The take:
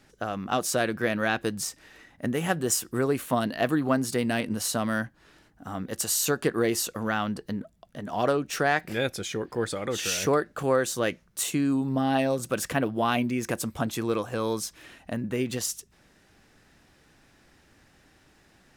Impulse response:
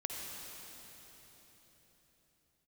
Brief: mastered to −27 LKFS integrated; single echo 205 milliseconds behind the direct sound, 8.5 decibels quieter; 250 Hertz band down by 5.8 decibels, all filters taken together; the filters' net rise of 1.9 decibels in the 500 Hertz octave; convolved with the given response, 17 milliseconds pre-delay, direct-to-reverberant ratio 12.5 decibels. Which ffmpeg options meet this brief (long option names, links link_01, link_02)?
-filter_complex "[0:a]equalizer=frequency=250:width_type=o:gain=-8.5,equalizer=frequency=500:width_type=o:gain=4.5,aecho=1:1:205:0.376,asplit=2[link_01][link_02];[1:a]atrim=start_sample=2205,adelay=17[link_03];[link_02][link_03]afir=irnorm=-1:irlink=0,volume=-14dB[link_04];[link_01][link_04]amix=inputs=2:normalize=0"